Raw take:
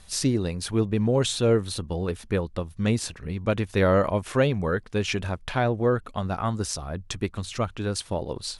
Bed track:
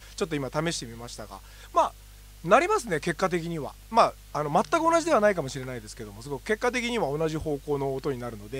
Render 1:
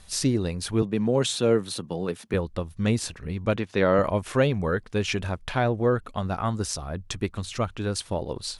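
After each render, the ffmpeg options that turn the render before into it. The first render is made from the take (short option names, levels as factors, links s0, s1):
-filter_complex "[0:a]asettb=1/sr,asplit=3[s0][s1][s2];[s0]atrim=end=0.824[s3];[s1]atrim=start=0.82:end=2.34,asetpts=PTS-STARTPTS,afade=t=in:d=0.004:c=qsin,afade=t=out:st=1.516:d=0.004:c=qsin,highpass=f=130:w=0.5412,highpass=f=130:w=1.3066[s4];[s2]atrim=start=2.336[s5];[s3][s4]acrossfade=d=0.004:c1=hsin:c2=qsin[s6];[s6][s5]acrossfade=d=0.004:c1=qsin:c2=hsin,asettb=1/sr,asplit=3[s7][s8][s9];[s7]atrim=end=3.564[s10];[s8]atrim=start=3.56:end=3.99,asetpts=PTS-STARTPTS,afade=t=in:d=0.004:c=qsin,afade=t=out:st=0.426:d=0.004:c=qsin,highpass=150,lowpass=5700[s11];[s9]atrim=start=3.986[s12];[s10][s11]acrossfade=d=0.004:c1=hsin:c2=qsin[s13];[s13][s12]acrossfade=d=0.004:c1=qsin:c2=hsin"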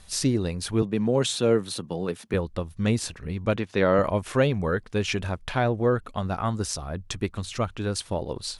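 -af anull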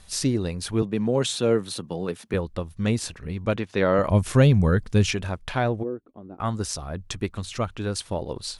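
-filter_complex "[0:a]asettb=1/sr,asplit=3[s0][s1][s2];[s0]atrim=end=4.094[s3];[s1]atrim=start=4.09:end=5.11,asetpts=PTS-STARTPTS,afade=t=in:d=0.004:c=qsin,afade=t=out:st=1.016:d=0.004:c=qsin,bass=f=250:g=11,treble=f=4000:g=7[s4];[s2]atrim=start=5.106[s5];[s3][s4]acrossfade=d=0.004:c1=hsin:c2=qsin[s6];[s6][s5]acrossfade=d=0.004:c1=qsin:c2=hsin,asplit=3[s7][s8][s9];[s7]afade=t=out:st=5.82:d=0.02[s10];[s8]bandpass=f=320:t=q:w=3.8,afade=t=in:st=5.82:d=0.02,afade=t=out:st=6.39:d=0.02[s11];[s9]afade=t=in:st=6.39:d=0.02[s12];[s10][s11][s12]amix=inputs=3:normalize=0"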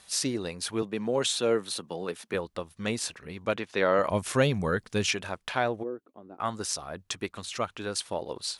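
-af "highpass=f=540:p=1"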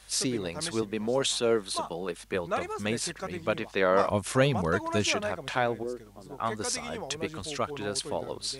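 -filter_complex "[1:a]volume=0.266[s0];[0:a][s0]amix=inputs=2:normalize=0"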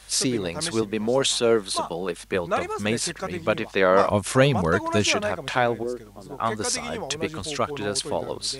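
-af "volume=1.88"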